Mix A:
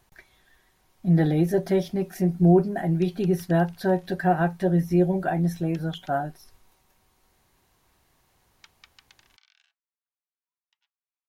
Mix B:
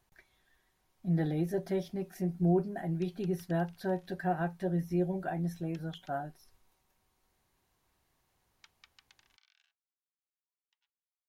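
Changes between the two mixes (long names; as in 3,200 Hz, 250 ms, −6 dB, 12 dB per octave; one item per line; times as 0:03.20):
speech −10.0 dB
background −7.0 dB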